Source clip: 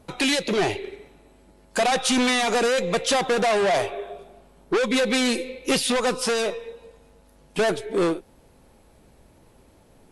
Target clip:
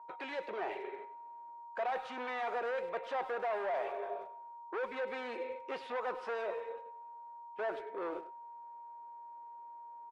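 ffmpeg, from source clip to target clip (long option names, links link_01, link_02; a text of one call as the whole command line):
ffmpeg -i in.wav -filter_complex "[0:a]areverse,acompressor=threshold=-34dB:ratio=6,areverse,agate=range=-13dB:threshold=-43dB:ratio=16:detection=peak,aeval=exprs='val(0)+0.00355*sin(2*PI*940*n/s)':channel_layout=same,asuperpass=centerf=940:order=4:qfactor=0.69,asplit=2[link_01][link_02];[link_02]adelay=100,highpass=300,lowpass=3400,asoftclip=type=hard:threshold=-37dB,volume=-13dB[link_03];[link_01][link_03]amix=inputs=2:normalize=0" out.wav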